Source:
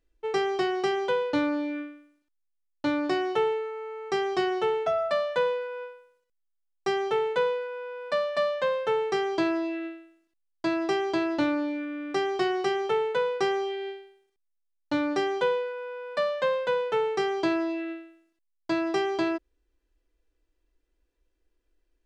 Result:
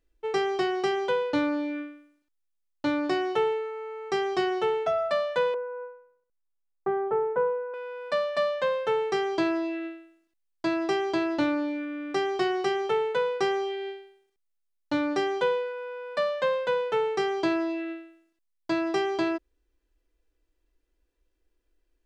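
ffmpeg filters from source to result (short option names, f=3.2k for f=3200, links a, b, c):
-filter_complex "[0:a]asettb=1/sr,asplit=3[a][b][c];[a]atrim=end=5.544[d];[b]atrim=start=5.54:end=7.74,asetpts=PTS-STARTPTS,afade=t=in:d=0.004:c=qsin,afade=t=out:st=2.196:d=0.004:c=qsin,lowpass=f=1.4k:w=0.5412,lowpass=f=1.4k:w=1.3066[e];[c]atrim=start=7.736[f];[d][e]acrossfade=d=0.004:c1=hsin:c2=qsin[g];[g][f]acrossfade=d=0.004:c1=qsin:c2=hsin"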